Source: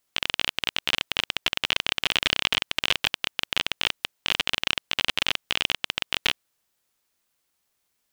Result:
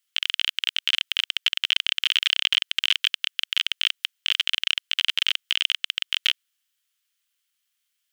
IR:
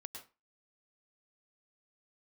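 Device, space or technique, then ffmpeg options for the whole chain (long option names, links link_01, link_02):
headphones lying on a table: -af "highpass=frequency=1400:width=0.5412,highpass=frequency=1400:width=1.3066,equalizer=frequency=3100:width_type=o:width=0.32:gain=7.5,volume=-2dB"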